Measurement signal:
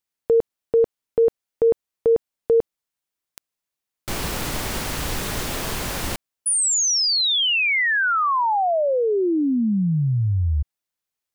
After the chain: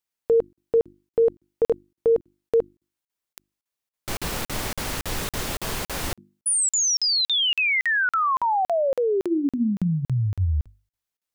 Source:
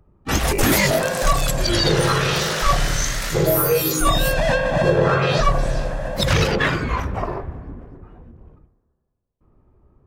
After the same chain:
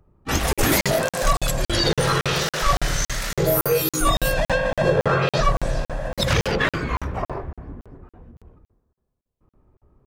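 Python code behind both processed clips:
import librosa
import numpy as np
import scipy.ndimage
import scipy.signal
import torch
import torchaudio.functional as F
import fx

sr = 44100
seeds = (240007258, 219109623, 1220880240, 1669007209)

y = fx.hum_notches(x, sr, base_hz=50, count=7)
y = fx.buffer_crackle(y, sr, first_s=0.53, period_s=0.28, block=2048, kind='zero')
y = y * librosa.db_to_amplitude(-1.5)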